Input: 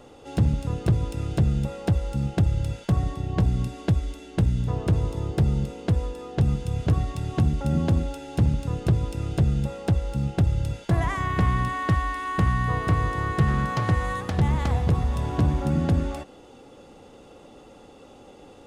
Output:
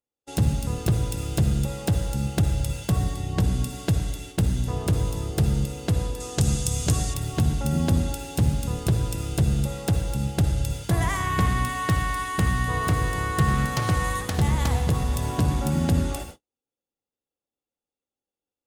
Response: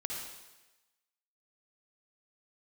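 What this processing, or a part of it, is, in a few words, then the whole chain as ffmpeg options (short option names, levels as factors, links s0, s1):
keyed gated reverb: -filter_complex "[0:a]aemphasis=mode=production:type=75fm,asplit=3[s0][s1][s2];[1:a]atrim=start_sample=2205[s3];[s1][s3]afir=irnorm=-1:irlink=0[s4];[s2]apad=whole_len=822991[s5];[s4][s5]sidechaingate=range=0.398:threshold=0.00708:ratio=16:detection=peak,volume=0.631[s6];[s0][s6]amix=inputs=2:normalize=0,agate=range=0.00562:threshold=0.0141:ratio=16:detection=peak,asettb=1/sr,asplit=3[s7][s8][s9];[s7]atrim=end=6.204[s10];[s8]atrim=start=6.2:end=7.14,asetpts=PTS-STARTPTS,afade=t=in:d=0.004:c=qsin,afade=t=out:st=0.936:d=0.004:c=qsin,equalizer=f=7200:t=o:w=1.4:g=12[s11];[s9]atrim=start=7.136[s12];[s10][s11]acrossfade=d=0.004:c1=hsin:c2=qsin[s13];[s13][s12]acrossfade=d=0.004:c1=qsin:c2=hsin,volume=0.668"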